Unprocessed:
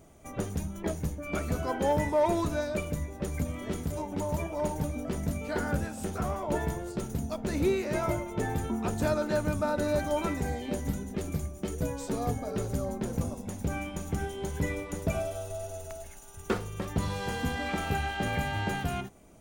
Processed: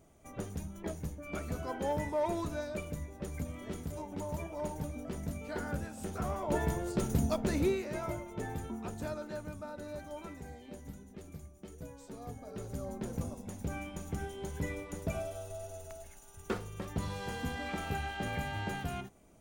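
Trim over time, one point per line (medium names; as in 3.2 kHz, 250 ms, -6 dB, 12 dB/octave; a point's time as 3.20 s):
5.88 s -7 dB
7.27 s +4 dB
7.92 s -8 dB
8.58 s -8 dB
9.70 s -15 dB
12.19 s -15 dB
12.99 s -6 dB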